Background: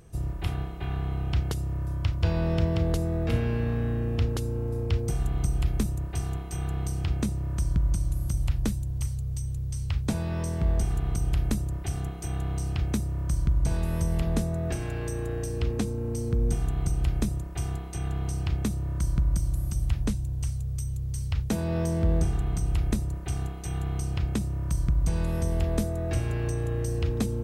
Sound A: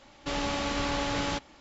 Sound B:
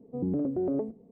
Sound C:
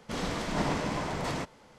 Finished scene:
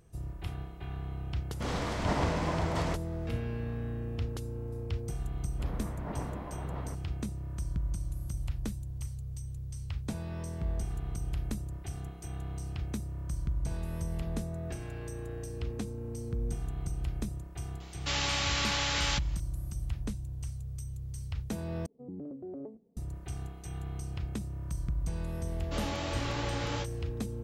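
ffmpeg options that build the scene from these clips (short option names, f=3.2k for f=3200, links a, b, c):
-filter_complex "[3:a]asplit=2[a][b];[1:a]asplit=2[c][d];[0:a]volume=-8.5dB[e];[a]equalizer=f=760:w=0.5:g=3.5[f];[b]lowpass=1.4k[g];[c]tiltshelf=f=970:g=-9[h];[d]flanger=delay=19.5:depth=3.3:speed=2.9[i];[e]asplit=2[j][k];[j]atrim=end=21.864[l];[2:a]atrim=end=1.11,asetpts=PTS-STARTPTS,volume=-13dB[m];[k]atrim=start=22.966[n];[f]atrim=end=1.78,asetpts=PTS-STARTPTS,volume=-3.5dB,afade=t=in:d=0.004:c=hsin,afade=t=out:st=1.776:d=0.004:c=hsin,adelay=1510[o];[g]atrim=end=1.78,asetpts=PTS-STARTPTS,volume=-9.5dB,afade=t=in:d=0.004:c=hsin,afade=t=out:st=1.776:d=0.004:c=hsin,adelay=5500[p];[h]atrim=end=1.6,asetpts=PTS-STARTPTS,volume=-3dB,afade=t=in:d=0.004:c=hsin,afade=t=out:st=1.596:d=0.004:c=hsin,adelay=784980S[q];[i]atrim=end=1.6,asetpts=PTS-STARTPTS,volume=-3dB,afade=t=in:d=0.004:c=hsin,afade=t=out:st=1.596:d=0.004:c=hsin,adelay=25450[r];[l][m]acrossfade=d=0.004:c1=hsin:c2=hsin[s];[s][n]acrossfade=d=0.004:c1=hsin:c2=hsin[t];[t][o][p][q][r]amix=inputs=5:normalize=0"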